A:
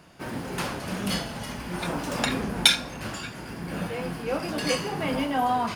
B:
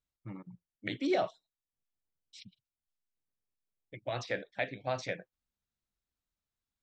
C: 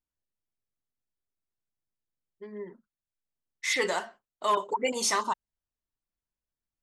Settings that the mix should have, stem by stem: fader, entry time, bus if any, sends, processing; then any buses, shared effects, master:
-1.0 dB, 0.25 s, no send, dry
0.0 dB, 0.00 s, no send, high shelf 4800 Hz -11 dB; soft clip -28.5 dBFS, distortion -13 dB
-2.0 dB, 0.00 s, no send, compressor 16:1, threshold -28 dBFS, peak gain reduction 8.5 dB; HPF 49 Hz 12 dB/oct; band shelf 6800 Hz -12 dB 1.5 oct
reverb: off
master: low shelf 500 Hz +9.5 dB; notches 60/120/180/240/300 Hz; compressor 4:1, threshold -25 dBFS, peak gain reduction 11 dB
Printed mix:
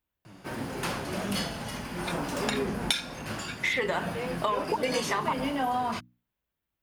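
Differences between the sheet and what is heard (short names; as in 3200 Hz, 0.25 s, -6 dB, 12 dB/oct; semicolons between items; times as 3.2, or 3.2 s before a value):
stem B 0.0 dB -> -7.0 dB; stem C -2.0 dB -> +9.0 dB; master: missing low shelf 500 Hz +9.5 dB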